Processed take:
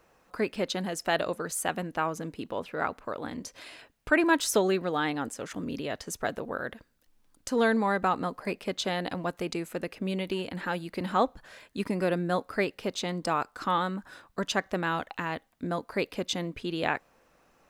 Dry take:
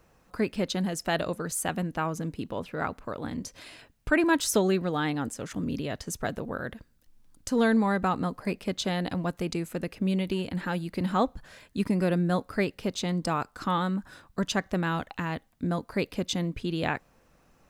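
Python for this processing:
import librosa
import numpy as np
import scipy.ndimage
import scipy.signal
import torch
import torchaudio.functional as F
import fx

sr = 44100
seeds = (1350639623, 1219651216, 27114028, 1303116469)

y = fx.bass_treble(x, sr, bass_db=-10, treble_db=-3)
y = y * librosa.db_to_amplitude(1.5)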